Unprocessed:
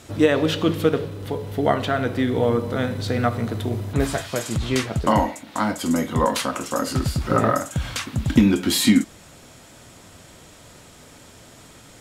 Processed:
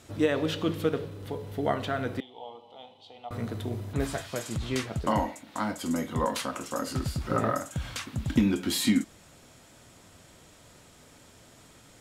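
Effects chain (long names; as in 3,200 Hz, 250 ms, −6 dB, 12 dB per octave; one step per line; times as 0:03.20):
0:02.20–0:03.31: pair of resonant band-passes 1,600 Hz, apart 1.9 octaves
level −8 dB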